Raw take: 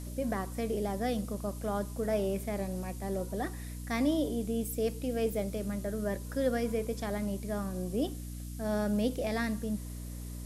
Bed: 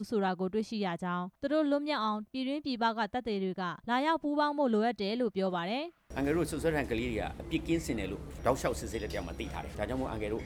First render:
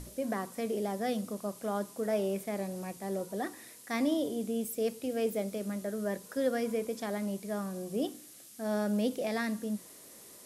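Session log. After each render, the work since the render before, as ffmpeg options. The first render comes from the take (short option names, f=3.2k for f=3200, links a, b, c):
-af "bandreject=f=60:t=h:w=6,bandreject=f=120:t=h:w=6,bandreject=f=180:t=h:w=6,bandreject=f=240:t=h:w=6,bandreject=f=300:t=h:w=6"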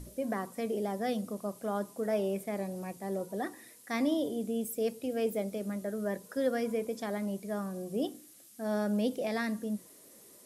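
-af "afftdn=nr=6:nf=-53"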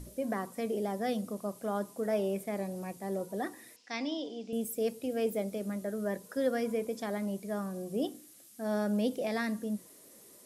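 -filter_complex "[0:a]asettb=1/sr,asplit=3[a][b][c];[a]atrim=end=3.764[d];[b]atrim=start=3.76:end=4.53,asetpts=PTS-STARTPTS,afade=t=in:d=0.004:c=qsin,afade=t=out:st=0.766:d=0.004:c=qsin,highpass=340,equalizer=f=380:t=q:w=4:g=-7,equalizer=f=590:t=q:w=4:g=-8,equalizer=f=1.2k:t=q:w=4:g=-7,equalizer=f=1.8k:t=q:w=4:g=-5,equalizer=f=2.7k:t=q:w=4:g=6,equalizer=f=5.2k:t=q:w=4:g=7,lowpass=f=5.6k:w=0.5412,lowpass=f=5.6k:w=1.3066[e];[c]atrim=start=4.526[f];[d][e]acrossfade=d=0.004:c1=hsin:c2=qsin[g];[g][f]acrossfade=d=0.004:c1=qsin:c2=hsin"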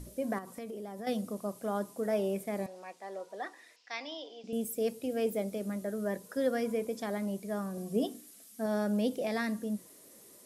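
-filter_complex "[0:a]asettb=1/sr,asplit=3[a][b][c];[a]atrim=end=0.384[d];[b]atrim=start=0.38:end=1.07,asetpts=PTS-STARTPTS,afade=t=in:d=0.004:c=qsin,afade=t=out:st=0.686:d=0.004:c=qsin,acompressor=threshold=-38dB:ratio=6:attack=3.2:release=140:knee=1:detection=peak[e];[c]atrim=start=1.066[f];[d][e]acrossfade=d=0.004:c1=hsin:c2=qsin[g];[g][f]acrossfade=d=0.004:c1=qsin:c2=hsin,asettb=1/sr,asplit=3[h][i][j];[h]atrim=end=2.664[k];[i]atrim=start=2.66:end=4.44,asetpts=PTS-STARTPTS,afade=t=in:d=0.004:c=qsin,afade=t=out:st=1.776:d=0.004:c=qsin,highpass=620,lowpass=5.3k[l];[j]atrim=start=4.436[m];[k][l]acrossfade=d=0.004:c1=hsin:c2=qsin[n];[n][m]acrossfade=d=0.004:c1=qsin:c2=hsin,asettb=1/sr,asplit=3[o][p][q];[o]atrim=end=7.774[r];[p]atrim=start=7.77:end=8.66,asetpts=PTS-STARTPTS,afade=t=in:d=0.004:c=qsin,afade=t=out:st=0.886:d=0.004:c=qsin,aecho=1:1:4.5:0.65,atrim=end_sample=39249[s];[q]atrim=start=8.656[t];[r][s]acrossfade=d=0.004:c1=hsin:c2=qsin[u];[u][t]acrossfade=d=0.004:c1=qsin:c2=hsin"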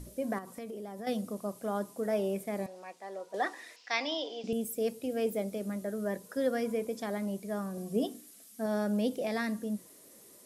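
-filter_complex "[0:a]asplit=3[a][b][c];[a]atrim=end=3.342[d];[b]atrim=start=3.338:end=4.532,asetpts=PTS-STARTPTS,volume=8dB[e];[c]atrim=start=4.528[f];[d][e]acrossfade=d=0.004:c1=hsin:c2=hsin[g];[g][f]acrossfade=d=0.004:c1=hsin:c2=hsin"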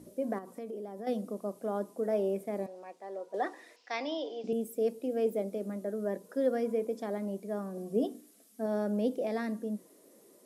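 -af "highpass=330,tiltshelf=f=690:g=8.5"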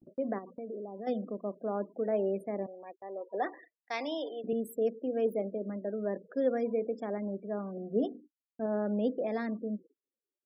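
-af "afftfilt=real='re*gte(hypot(re,im),0.00501)':imag='im*gte(hypot(re,im),0.00501)':win_size=1024:overlap=0.75,agate=range=-37dB:threshold=-52dB:ratio=16:detection=peak"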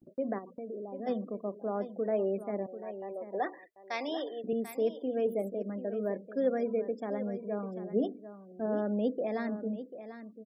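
-af "aecho=1:1:741:0.251"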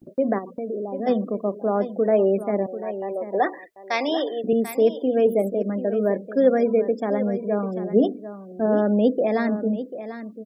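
-af "volume=11.5dB"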